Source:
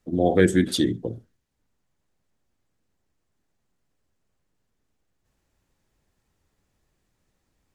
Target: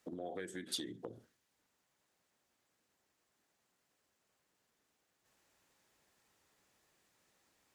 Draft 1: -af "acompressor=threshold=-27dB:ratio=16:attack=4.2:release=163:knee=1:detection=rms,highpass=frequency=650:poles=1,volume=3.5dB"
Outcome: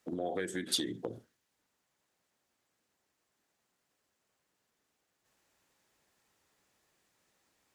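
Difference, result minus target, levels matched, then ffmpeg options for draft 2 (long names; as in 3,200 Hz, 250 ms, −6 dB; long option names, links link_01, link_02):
downward compressor: peak gain reduction −8 dB
-af "acompressor=threshold=-35.5dB:ratio=16:attack=4.2:release=163:knee=1:detection=rms,highpass=frequency=650:poles=1,volume=3.5dB"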